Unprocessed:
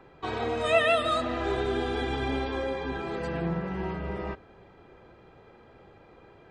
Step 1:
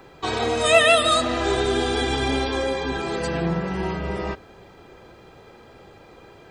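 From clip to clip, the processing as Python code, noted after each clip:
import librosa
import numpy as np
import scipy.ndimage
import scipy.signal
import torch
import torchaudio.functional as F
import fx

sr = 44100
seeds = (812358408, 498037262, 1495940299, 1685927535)

y = fx.bass_treble(x, sr, bass_db=-1, treble_db=14)
y = y * 10.0 ** (6.5 / 20.0)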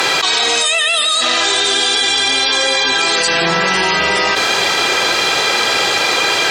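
y = fx.bandpass_q(x, sr, hz=5600.0, q=0.81)
y = fx.env_flatten(y, sr, amount_pct=100)
y = y * 10.0 ** (6.0 / 20.0)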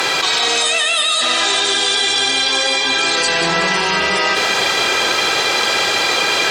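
y = fx.quant_dither(x, sr, seeds[0], bits=10, dither='none')
y = fx.echo_feedback(y, sr, ms=189, feedback_pct=51, wet_db=-7)
y = y * 10.0 ** (-2.5 / 20.0)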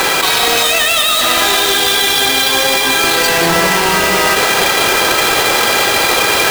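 y = fx.halfwave_hold(x, sr)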